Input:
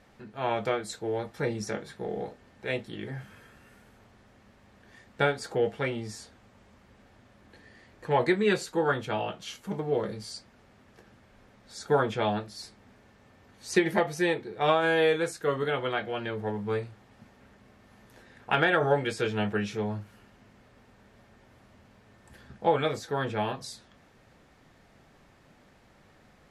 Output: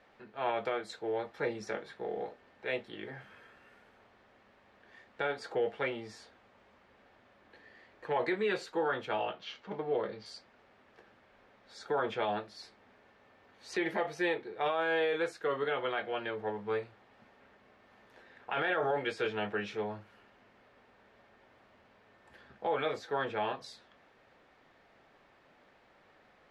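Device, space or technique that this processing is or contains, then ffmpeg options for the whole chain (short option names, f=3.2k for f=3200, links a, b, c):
DJ mixer with the lows and highs turned down: -filter_complex "[0:a]acrossover=split=320 4400:gain=0.224 1 0.158[a][b][c];[a][b][c]amix=inputs=3:normalize=0,alimiter=limit=-21dB:level=0:latency=1:release=29,asettb=1/sr,asplit=3[d][e][f];[d]atrim=end=9.264[g];[e]atrim=start=9.26:end=10.26,asetpts=PTS-STARTPTS,afade=t=in:d=0.004:c=qsin,afade=t=out:st=0.996:d=0.004:c=qsin,lowpass=f=5.4k:w=0.5412,lowpass=f=5.4k:w=1.3066[h];[f]atrim=start=10.256[i];[g][h]acrossfade=d=0.004:c1=hsin:c2=qsin[j];[j][i]acrossfade=d=0.004:c1=qsin:c2=hsin,volume=-1.5dB"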